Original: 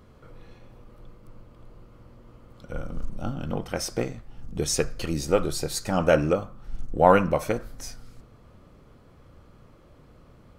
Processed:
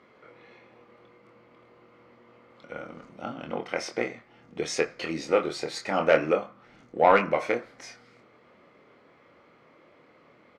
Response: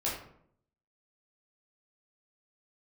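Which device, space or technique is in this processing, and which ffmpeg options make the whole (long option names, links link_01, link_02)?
intercom: -filter_complex "[0:a]highpass=320,lowpass=4100,equalizer=frequency=2100:width_type=o:width=0.32:gain=10.5,asoftclip=type=tanh:threshold=-8dB,asplit=2[link_01][link_02];[link_02]adelay=25,volume=-6dB[link_03];[link_01][link_03]amix=inputs=2:normalize=0"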